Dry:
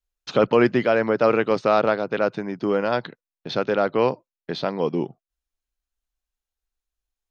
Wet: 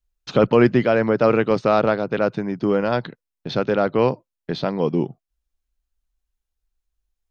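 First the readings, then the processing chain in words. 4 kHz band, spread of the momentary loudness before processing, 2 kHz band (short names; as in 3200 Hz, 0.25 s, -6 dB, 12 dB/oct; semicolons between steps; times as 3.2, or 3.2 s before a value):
0.0 dB, 10 LU, 0.0 dB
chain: low shelf 200 Hz +10.5 dB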